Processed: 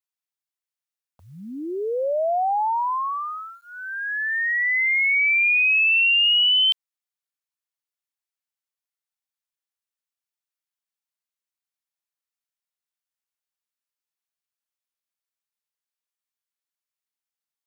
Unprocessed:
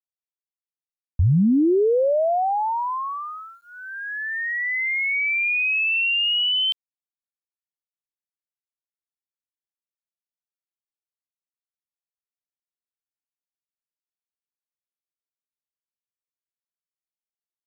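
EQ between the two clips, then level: HPF 820 Hz 12 dB/oct; +3.5 dB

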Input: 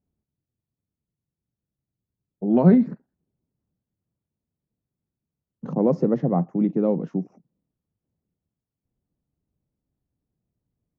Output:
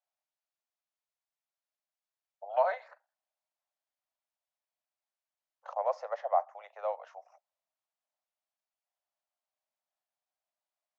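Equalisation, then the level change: steep high-pass 600 Hz 72 dB/oct; air absorption 55 m; +1.5 dB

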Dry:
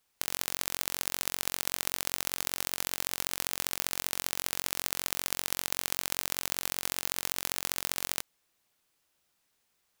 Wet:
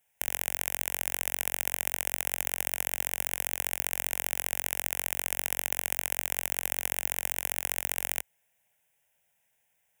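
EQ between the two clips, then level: HPF 48 Hz; bell 71 Hz -5.5 dB 0.51 oct; fixed phaser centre 1200 Hz, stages 6; +4.0 dB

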